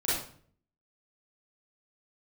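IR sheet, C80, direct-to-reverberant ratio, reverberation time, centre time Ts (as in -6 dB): 5.5 dB, -10.5 dB, 0.50 s, 62 ms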